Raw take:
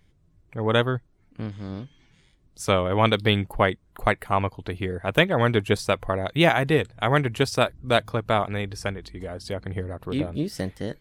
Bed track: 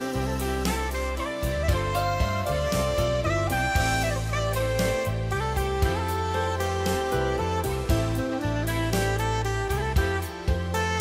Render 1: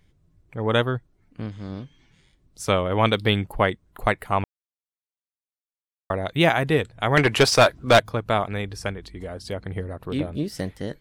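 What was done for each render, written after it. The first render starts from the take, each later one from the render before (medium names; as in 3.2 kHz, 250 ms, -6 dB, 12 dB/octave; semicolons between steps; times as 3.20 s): 4.44–6.10 s: mute; 7.17–8.00 s: overdrive pedal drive 22 dB, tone 4.1 kHz, clips at -5 dBFS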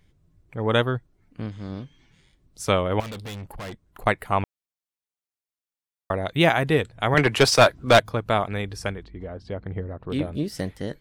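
3.00–4.06 s: valve stage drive 33 dB, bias 0.45; 7.14–7.79 s: three bands expanded up and down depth 40%; 9.03–10.10 s: tape spacing loss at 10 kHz 28 dB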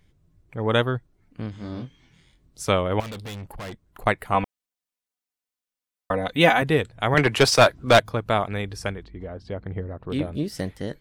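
1.51–2.63 s: doubling 24 ms -4 dB; 4.34–6.62 s: comb 4 ms, depth 80%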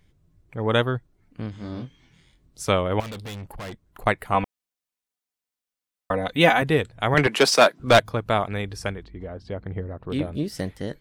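7.27–7.80 s: steep high-pass 170 Hz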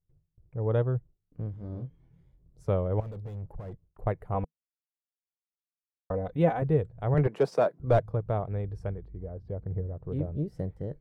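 gate with hold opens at -50 dBFS; FFT filter 160 Hz 0 dB, 230 Hz -12 dB, 470 Hz -4 dB, 3.3 kHz -29 dB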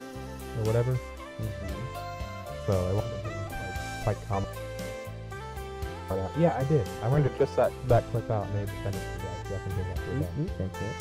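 add bed track -12 dB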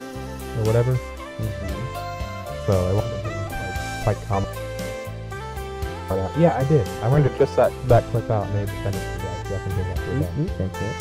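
trim +7 dB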